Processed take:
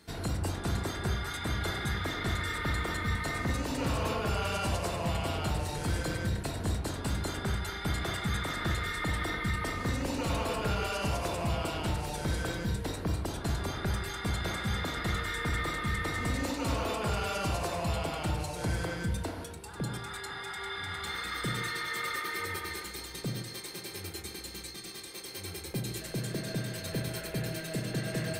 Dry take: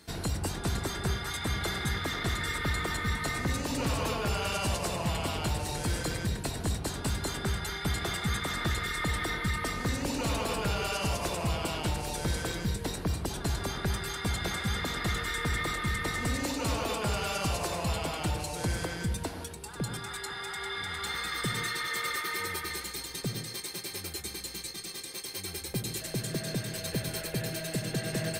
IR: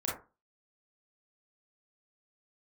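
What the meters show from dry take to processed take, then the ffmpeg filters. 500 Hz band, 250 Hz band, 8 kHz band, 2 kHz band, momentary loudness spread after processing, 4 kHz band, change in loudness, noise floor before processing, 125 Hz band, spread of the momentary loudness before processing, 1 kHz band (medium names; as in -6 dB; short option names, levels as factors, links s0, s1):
-0.5 dB, -0.5 dB, -5.0 dB, -1.5 dB, 7 LU, -3.0 dB, -1.5 dB, -42 dBFS, 0.0 dB, 6 LU, -0.5 dB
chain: -filter_complex "[0:a]asplit=2[s0][s1];[1:a]atrim=start_sample=2205,lowpass=4600[s2];[s1][s2]afir=irnorm=-1:irlink=0,volume=0.447[s3];[s0][s3]amix=inputs=2:normalize=0,volume=0.596"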